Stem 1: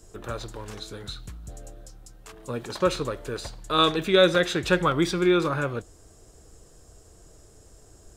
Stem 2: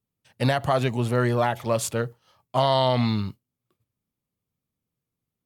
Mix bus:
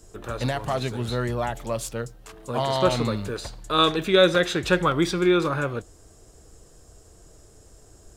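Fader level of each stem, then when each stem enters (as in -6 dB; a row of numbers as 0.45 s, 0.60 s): +1.0 dB, -4.5 dB; 0.00 s, 0.00 s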